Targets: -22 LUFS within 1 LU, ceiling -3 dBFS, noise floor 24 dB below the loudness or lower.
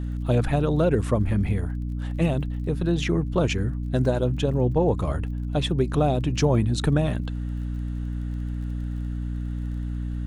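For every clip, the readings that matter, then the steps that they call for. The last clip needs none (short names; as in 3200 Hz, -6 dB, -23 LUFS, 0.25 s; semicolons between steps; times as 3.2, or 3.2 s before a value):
ticks 28/s; hum 60 Hz; harmonics up to 300 Hz; hum level -26 dBFS; loudness -25.0 LUFS; peak -8.0 dBFS; loudness target -22.0 LUFS
-> de-click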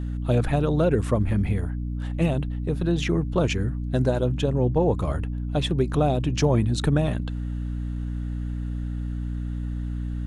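ticks 0.097/s; hum 60 Hz; harmonics up to 300 Hz; hum level -26 dBFS
-> de-hum 60 Hz, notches 5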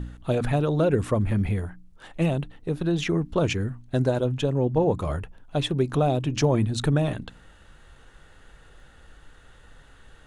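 hum none; loudness -25.0 LUFS; peak -9.0 dBFS; loudness target -22.0 LUFS
-> gain +3 dB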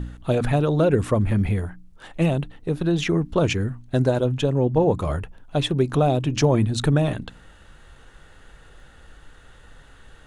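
loudness -22.0 LUFS; peak -6.0 dBFS; noise floor -50 dBFS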